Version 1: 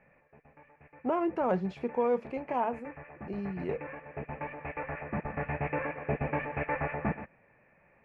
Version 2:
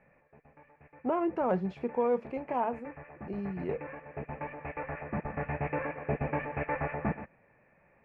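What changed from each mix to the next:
master: add high-shelf EQ 3,100 Hz −7 dB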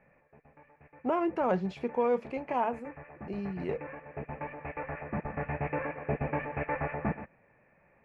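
speech: add high-shelf EQ 2,500 Hz +11.5 dB

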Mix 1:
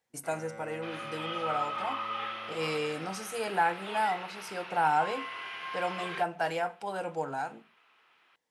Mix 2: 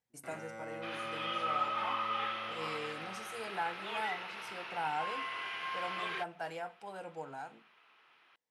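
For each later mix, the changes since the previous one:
speech −10.0 dB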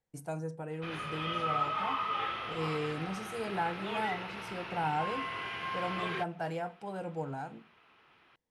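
first sound: muted
master: remove high-pass filter 870 Hz 6 dB per octave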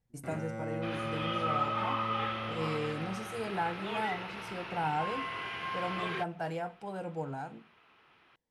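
first sound: unmuted

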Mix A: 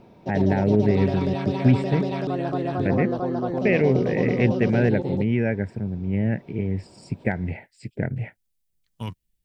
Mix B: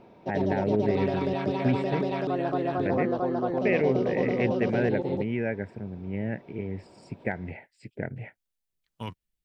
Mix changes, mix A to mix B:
first voice −3.5 dB
master: add bass and treble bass −7 dB, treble −7 dB

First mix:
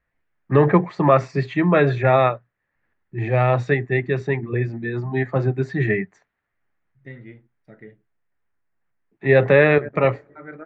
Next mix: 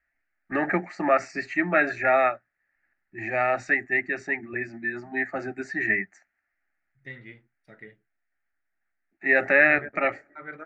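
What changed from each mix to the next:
first voice: add phaser with its sweep stopped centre 690 Hz, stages 8
master: add tilt shelving filter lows −7.5 dB, about 1,100 Hz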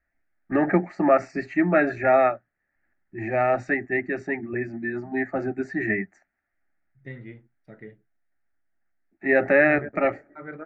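master: add tilt shelving filter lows +7.5 dB, about 1,100 Hz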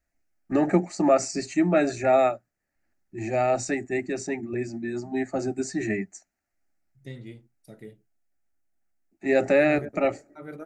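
master: remove low-pass with resonance 1,800 Hz, resonance Q 2.9

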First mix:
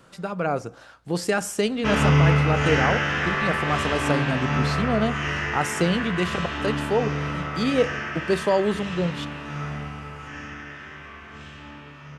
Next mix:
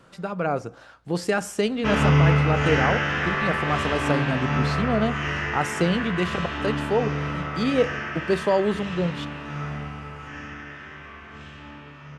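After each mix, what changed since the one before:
master: add high-shelf EQ 5,600 Hz −6.5 dB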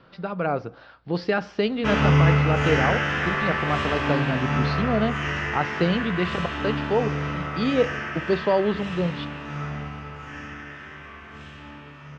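speech: add Butterworth low-pass 4,900 Hz 48 dB per octave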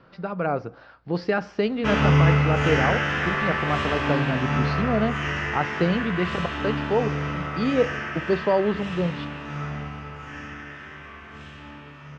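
speech: add parametric band 3,500 Hz −6 dB 0.72 octaves

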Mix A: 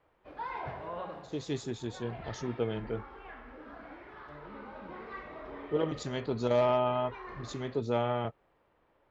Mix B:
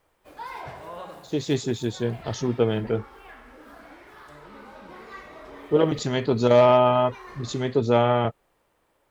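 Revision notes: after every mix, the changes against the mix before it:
speech +10.5 dB
background: remove high-frequency loss of the air 310 metres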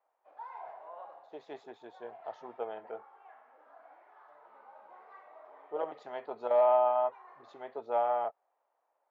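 master: add four-pole ladder band-pass 840 Hz, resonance 55%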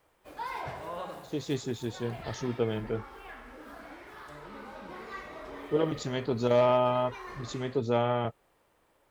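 speech −7.5 dB
master: remove four-pole ladder band-pass 840 Hz, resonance 55%

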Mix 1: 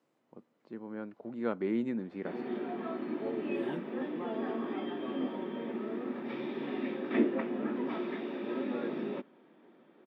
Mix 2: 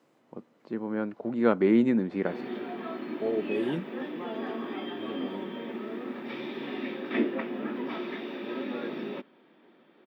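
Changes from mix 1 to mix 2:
first voice +10.0 dB
second voice +9.5 dB
background: add high-shelf EQ 2,100 Hz +10 dB

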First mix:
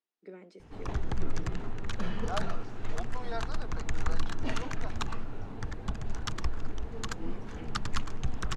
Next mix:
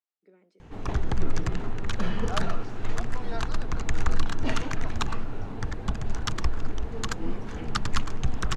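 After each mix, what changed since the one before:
first voice −11.5 dB
background +5.5 dB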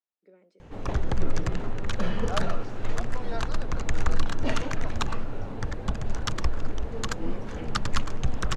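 master: add parametric band 550 Hz +8 dB 0.27 octaves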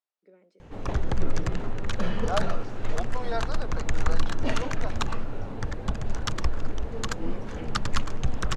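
second voice +5.5 dB

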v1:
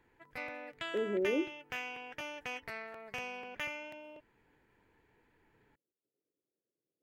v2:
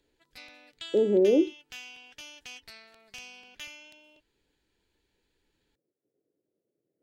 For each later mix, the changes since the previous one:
speech +11.0 dB
background: add graphic EQ with 10 bands 125 Hz −10 dB, 250 Hz −4 dB, 500 Hz −11 dB, 1,000 Hz −9 dB, 2,000 Hz −10 dB, 4,000 Hz +11 dB, 8,000 Hz +6 dB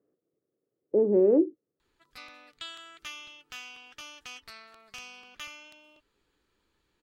background: entry +1.80 s
master: add parametric band 1,200 Hz +14 dB 0.38 octaves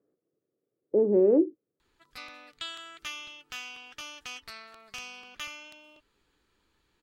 background +3.0 dB

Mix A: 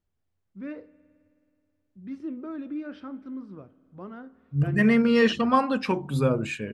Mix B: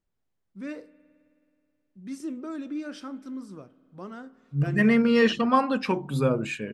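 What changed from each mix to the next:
first voice: remove high-frequency loss of the air 350 metres
master: add parametric band 87 Hz −14 dB 0.4 octaves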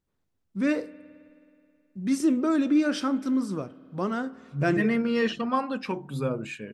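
first voice +11.5 dB
second voice −5.0 dB

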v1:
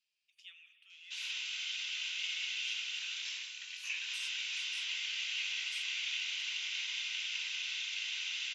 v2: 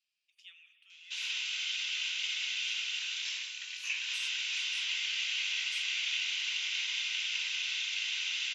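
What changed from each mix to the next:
background +4.0 dB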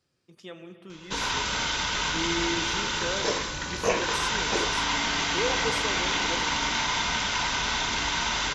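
master: remove four-pole ladder high-pass 2,400 Hz, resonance 65%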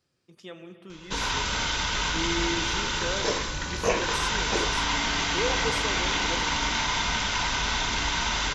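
background: add low-shelf EQ 69 Hz +10 dB

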